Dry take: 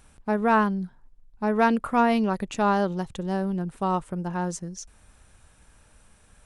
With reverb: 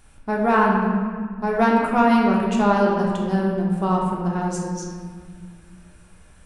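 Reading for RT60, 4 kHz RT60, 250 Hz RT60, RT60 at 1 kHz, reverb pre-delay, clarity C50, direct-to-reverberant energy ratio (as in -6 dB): 1.8 s, 1.2 s, 2.9 s, 1.7 s, 3 ms, 1.0 dB, -3.0 dB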